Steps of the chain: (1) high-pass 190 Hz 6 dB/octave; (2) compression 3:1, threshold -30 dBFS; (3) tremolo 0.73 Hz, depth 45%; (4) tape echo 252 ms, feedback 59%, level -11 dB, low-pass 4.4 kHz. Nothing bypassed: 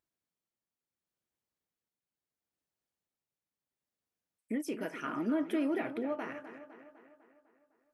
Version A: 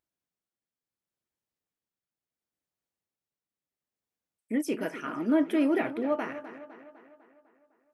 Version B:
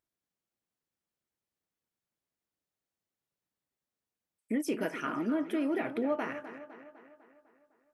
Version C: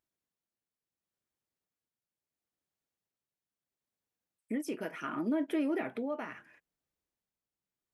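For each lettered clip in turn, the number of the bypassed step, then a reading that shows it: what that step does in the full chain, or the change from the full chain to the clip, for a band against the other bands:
2, mean gain reduction 5.0 dB; 3, loudness change +2.0 LU; 4, echo-to-direct -26.0 dB to none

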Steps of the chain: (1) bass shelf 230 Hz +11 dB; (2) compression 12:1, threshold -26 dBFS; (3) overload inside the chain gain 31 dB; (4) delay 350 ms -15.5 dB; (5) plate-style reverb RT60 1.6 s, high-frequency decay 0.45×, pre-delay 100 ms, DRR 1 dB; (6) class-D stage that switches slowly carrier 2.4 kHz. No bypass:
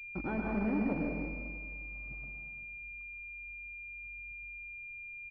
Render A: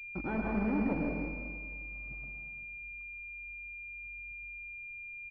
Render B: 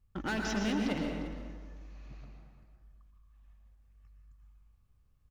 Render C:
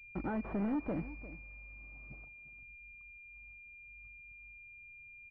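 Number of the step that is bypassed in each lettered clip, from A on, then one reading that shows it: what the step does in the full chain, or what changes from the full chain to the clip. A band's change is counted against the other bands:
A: 2, mean gain reduction 2.0 dB; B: 6, 2 kHz band -3.0 dB; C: 5, momentary loudness spread change +5 LU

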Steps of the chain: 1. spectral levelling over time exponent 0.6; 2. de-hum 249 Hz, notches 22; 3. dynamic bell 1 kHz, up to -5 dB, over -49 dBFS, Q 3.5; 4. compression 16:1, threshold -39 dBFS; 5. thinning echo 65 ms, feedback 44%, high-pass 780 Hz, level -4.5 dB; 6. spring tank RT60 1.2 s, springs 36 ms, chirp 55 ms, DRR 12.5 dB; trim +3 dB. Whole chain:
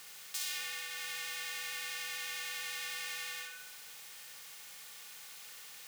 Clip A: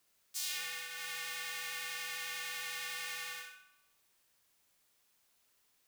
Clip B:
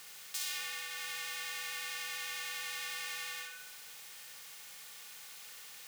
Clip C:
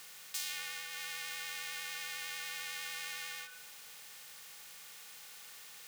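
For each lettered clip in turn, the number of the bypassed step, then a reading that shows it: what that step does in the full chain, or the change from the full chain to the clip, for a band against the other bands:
1, 1 kHz band +1.5 dB; 3, 1 kHz band +2.0 dB; 5, loudness change -1.5 LU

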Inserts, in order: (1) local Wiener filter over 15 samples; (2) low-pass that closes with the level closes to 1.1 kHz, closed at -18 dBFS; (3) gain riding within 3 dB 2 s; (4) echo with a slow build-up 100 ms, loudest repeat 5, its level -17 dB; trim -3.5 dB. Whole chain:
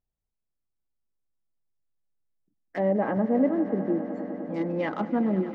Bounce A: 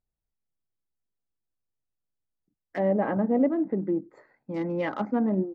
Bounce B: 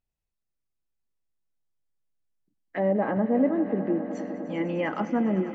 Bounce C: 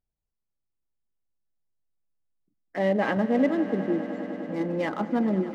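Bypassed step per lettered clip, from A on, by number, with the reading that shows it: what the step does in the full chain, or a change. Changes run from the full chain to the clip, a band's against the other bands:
4, echo-to-direct -7.5 dB to none; 1, 2 kHz band +2.0 dB; 2, 2 kHz band +5.0 dB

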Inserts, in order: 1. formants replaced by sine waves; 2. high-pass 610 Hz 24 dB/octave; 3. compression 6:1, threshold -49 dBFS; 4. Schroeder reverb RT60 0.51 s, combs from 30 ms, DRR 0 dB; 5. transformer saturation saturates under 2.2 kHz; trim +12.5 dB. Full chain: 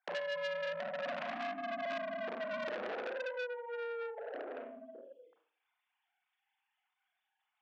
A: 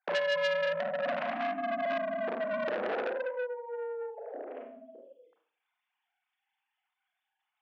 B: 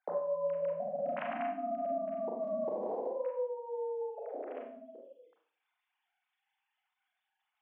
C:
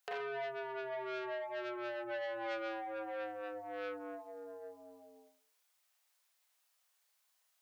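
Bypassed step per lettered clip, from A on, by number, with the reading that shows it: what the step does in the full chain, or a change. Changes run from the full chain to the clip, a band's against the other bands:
3, mean gain reduction 4.0 dB; 5, crest factor change -3.5 dB; 1, 250 Hz band +3.5 dB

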